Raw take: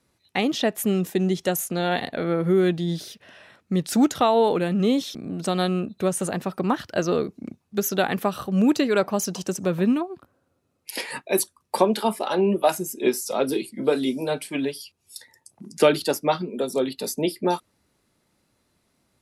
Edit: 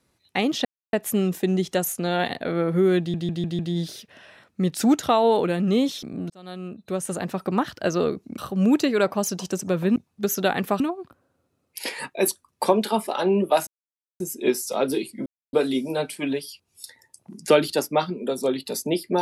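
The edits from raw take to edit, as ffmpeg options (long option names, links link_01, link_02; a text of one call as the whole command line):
ffmpeg -i in.wav -filter_complex "[0:a]asplit=12[link_01][link_02][link_03][link_04][link_05][link_06][link_07][link_08][link_09][link_10][link_11][link_12];[link_01]atrim=end=0.65,asetpts=PTS-STARTPTS,afade=type=out:start_time=0.646:duration=0.004:curve=hsin,apad=pad_dur=0.28[link_13];[link_02]atrim=start=0.65:end=2.862,asetpts=PTS-STARTPTS,afade=type=in:duration=0.004:curve=hsin[link_14];[link_03]atrim=start=2.708:end=2.862[link_15];[link_04]atrim=start=2.708:end=2.862[link_16];[link_05]atrim=start=2.708:end=2.862[link_17];[link_06]atrim=start=2.708:end=5.42,asetpts=PTS-STARTPTS,afade=type=out:start_time=2.708:duration=0.004:curve=hsin[link_18];[link_07]atrim=start=5.42:end=7.502,asetpts=PTS-STARTPTS,afade=type=in:duration=1.08[link_19];[link_08]atrim=start=8.338:end=9.922[link_20];[link_09]atrim=start=7.498:end=8.342[link_21];[link_10]atrim=start=9.918:end=12.79,asetpts=PTS-STARTPTS,afade=type=out:start_time=2.868:duration=0.004:curve=hsin,apad=pad_dur=0.53[link_22];[link_11]atrim=start=12.79:end=13.85,asetpts=PTS-STARTPTS,afade=type=in:duration=0.004:curve=hsin,afade=type=out:start_time=1.056:duration=0.004:curve=hsin,apad=pad_dur=0.27[link_23];[link_12]atrim=start=13.85,asetpts=PTS-STARTPTS,afade=type=in:duration=0.004:curve=hsin[link_24];[link_13][link_14]concat=n=2:v=0:a=1[link_25];[link_25][link_15]acrossfade=duration=0.004:curve1=hsin:curve2=hsin[link_26];[link_26][link_16]acrossfade=duration=0.004:curve1=hsin:curve2=hsin[link_27];[link_27][link_17]acrossfade=duration=0.004:curve1=hsin:curve2=hsin[link_28];[link_18][link_19]concat=n=2:v=0:a=1[link_29];[link_28][link_29]acrossfade=duration=0.004:curve1=hsin:curve2=hsin[link_30];[link_30][link_20]acrossfade=duration=0.004:curve1=hsin:curve2=hsin[link_31];[link_31][link_21]acrossfade=duration=0.004:curve1=hsin:curve2=hsin[link_32];[link_22][link_23][link_24]concat=n=3:v=0:a=1[link_33];[link_32][link_33]acrossfade=duration=0.004:curve1=hsin:curve2=hsin" out.wav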